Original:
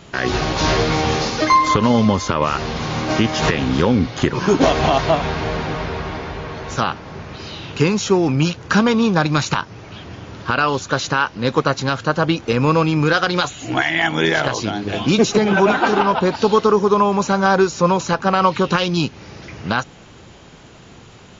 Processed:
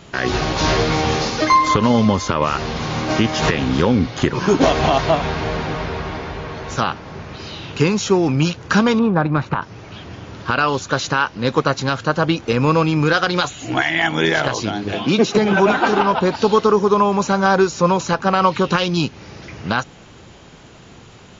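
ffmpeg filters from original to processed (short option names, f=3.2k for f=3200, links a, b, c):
-filter_complex "[0:a]asettb=1/sr,asplit=3[a][b][c];[a]atrim=end=8.994[d];[b]atrim=start=8.99:end=9.62,asetpts=PTS-STARTPTS,afade=t=in:d=0.004:c=qsin,afade=t=out:st=0.626:d=0.004:c=qsin,lowpass=1.5k[e];[c]atrim=start=9.616[f];[d][e]acrossfade=d=0.004:c1=hsin:c2=qsin[g];[g][f]acrossfade=d=0.004:c1=qsin:c2=hsin,asettb=1/sr,asplit=3[h][i][j];[h]atrim=end=14.944[k];[i]atrim=start=14.94:end=15.35,asetpts=PTS-STARTPTS,afade=t=in:d=0.004:c=qsin,afade=t=out:st=0.406:d=0.004:c=qsin,highpass=150,lowpass=5.2k[l];[j]atrim=start=15.346[m];[k][l]acrossfade=d=0.004:c1=hsin:c2=qsin[n];[n][m]acrossfade=d=0.004:c1=qsin:c2=hsin"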